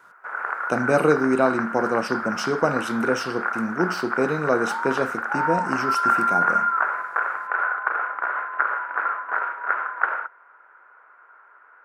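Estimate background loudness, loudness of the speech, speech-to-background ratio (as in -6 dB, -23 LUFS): -25.0 LUFS, -25.0 LUFS, 0.0 dB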